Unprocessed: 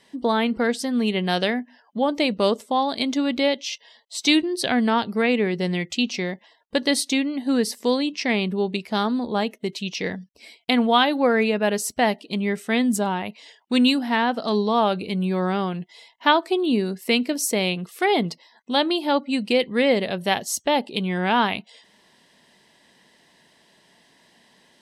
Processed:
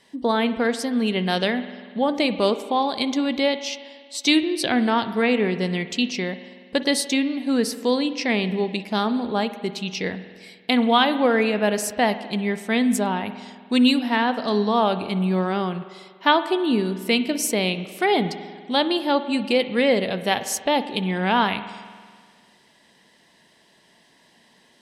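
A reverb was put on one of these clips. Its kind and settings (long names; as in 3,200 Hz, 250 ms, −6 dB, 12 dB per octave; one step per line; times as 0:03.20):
spring reverb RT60 1.8 s, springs 48 ms, chirp 20 ms, DRR 11.5 dB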